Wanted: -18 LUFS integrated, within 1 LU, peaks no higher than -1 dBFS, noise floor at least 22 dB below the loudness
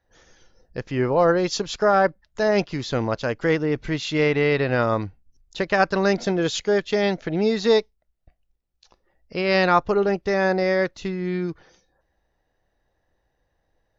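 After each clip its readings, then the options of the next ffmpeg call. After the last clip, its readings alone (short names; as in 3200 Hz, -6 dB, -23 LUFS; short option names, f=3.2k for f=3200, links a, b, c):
loudness -22.0 LUFS; peak -5.5 dBFS; loudness target -18.0 LUFS
-> -af "volume=4dB"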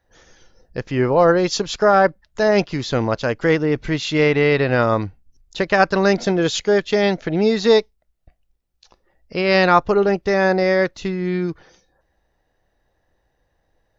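loudness -18.0 LUFS; peak -1.5 dBFS; noise floor -69 dBFS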